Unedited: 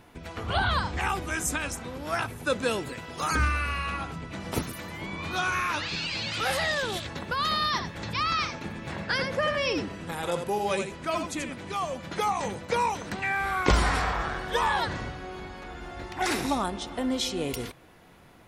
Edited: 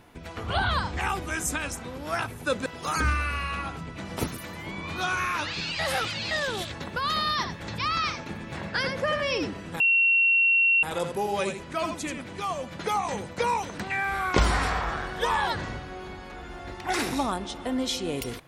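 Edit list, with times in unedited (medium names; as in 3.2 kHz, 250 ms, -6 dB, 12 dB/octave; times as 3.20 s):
2.66–3.01 s: delete
6.14–6.66 s: reverse
10.15 s: add tone 2.73 kHz -17.5 dBFS 1.03 s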